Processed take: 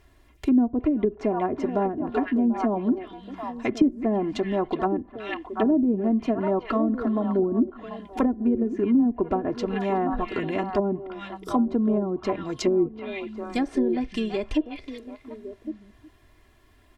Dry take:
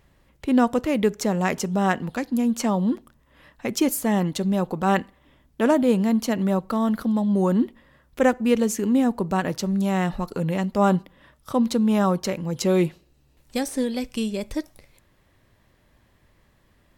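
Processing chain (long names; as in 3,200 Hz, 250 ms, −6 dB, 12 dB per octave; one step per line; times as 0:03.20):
comb filter 2.9 ms, depth 77%
echo through a band-pass that steps 369 ms, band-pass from 2,700 Hz, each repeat −1.4 octaves, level −3 dB
treble cut that deepens with the level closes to 310 Hz, closed at −16 dBFS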